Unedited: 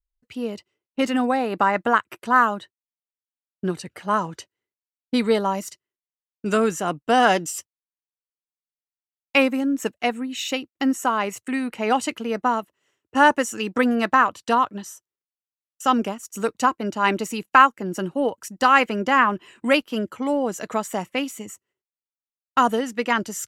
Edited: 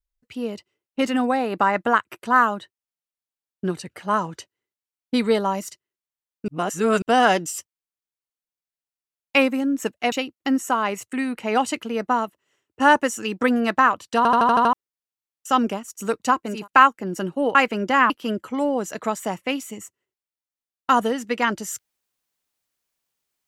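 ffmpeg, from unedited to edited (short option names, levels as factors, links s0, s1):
-filter_complex "[0:a]asplit=14[s0][s1][s2][s3][s4][s5][s6][s7][s8][s9][s10][s11][s12][s13];[s0]atrim=end=6.482[s14];[s1]atrim=start=6.478:end=7.022,asetpts=PTS-STARTPTS,areverse[s15];[s2]atrim=start=7.018:end=10.122[s16];[s3]atrim=start=10.468:end=14.602[s17];[s4]atrim=start=14.518:end=14.602[s18];[s5]atrim=start=14.518:end=14.602[s19];[s6]atrim=start=14.518:end=14.602[s20];[s7]atrim=start=14.518:end=14.602[s21];[s8]atrim=start=14.518:end=14.602[s22];[s9]atrim=start=14.518:end=14.602[s23];[s10]atrim=start=15.078:end=17.03[s24];[s11]atrim=start=17.23:end=18.342[s25];[s12]atrim=start=18.728:end=19.282[s26];[s13]atrim=start=19.778[s27];[s14][s15]acrossfade=d=0.004:c1=hsin:c2=hsin[s28];[s28][s16]acrossfade=d=0.004:c1=hsin:c2=hsin[s29];[s29][s17]acrossfade=d=0.004:c1=hsin:c2=hsin[s30];[s30][s18]acrossfade=d=0.004:c1=hsin:c2=hsin[s31];[s31][s19]acrossfade=d=0.004:c1=hsin:c2=hsin[s32];[s32][s20]acrossfade=d=0.004:c1=hsin:c2=hsin[s33];[s33][s21]acrossfade=d=0.004:c1=hsin:c2=hsin[s34];[s34][s22]acrossfade=d=0.004:c1=hsin:c2=hsin[s35];[s35][s23]acrossfade=d=0.004:c1=hsin:c2=hsin[s36];[s36][s24]acrossfade=d=0.004:c1=hsin:c2=hsin[s37];[s37][s25]acrossfade=d=0.24:c1=tri:c2=tri[s38];[s38][s26]acrossfade=d=0.004:c1=hsin:c2=hsin[s39];[s39][s27]acrossfade=d=0.004:c1=hsin:c2=hsin"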